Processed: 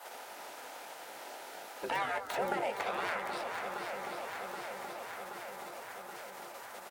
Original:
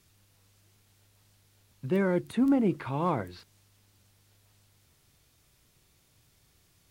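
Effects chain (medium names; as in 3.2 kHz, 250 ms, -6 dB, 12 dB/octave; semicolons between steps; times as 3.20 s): tracing distortion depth 0.22 ms; feedback echo behind a low-pass 198 ms, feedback 59%, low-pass 1.3 kHz, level -14 dB; in parallel at -0.5 dB: peak limiter -22.5 dBFS, peak gain reduction 6.5 dB; on the sum: Butterworth band-stop 1.1 kHz, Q 7.4; spectral gate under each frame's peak -20 dB weak; high-pass 140 Hz 6 dB/octave; peaking EQ 760 Hz +13.5 dB 2 oct; doubling 20 ms -12 dB; shuffle delay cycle 776 ms, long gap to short 1.5:1, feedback 52%, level -10.5 dB; three bands compressed up and down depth 70%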